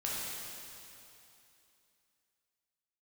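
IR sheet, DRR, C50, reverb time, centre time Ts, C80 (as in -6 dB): -6.5 dB, -3.0 dB, 2.8 s, 0.172 s, -1.5 dB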